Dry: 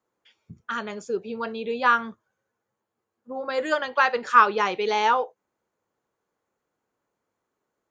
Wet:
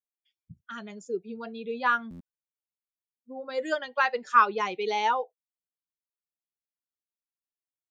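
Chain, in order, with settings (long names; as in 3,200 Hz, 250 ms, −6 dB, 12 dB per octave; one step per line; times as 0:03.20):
spectral dynamics exaggerated over time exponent 1.5
tape wow and flutter 18 cents
buffer that repeats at 0:02.10, samples 512, times 8
level −2.5 dB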